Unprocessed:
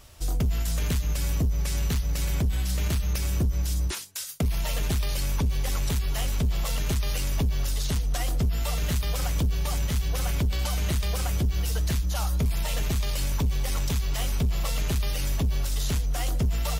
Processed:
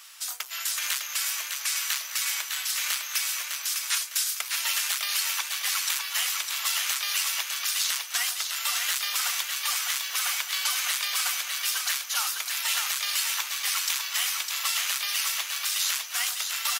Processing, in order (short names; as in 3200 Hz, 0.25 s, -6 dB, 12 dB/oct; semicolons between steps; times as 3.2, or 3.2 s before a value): HPF 1200 Hz 24 dB/oct; feedback echo 0.605 s, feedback 35%, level -5 dB; gain +8 dB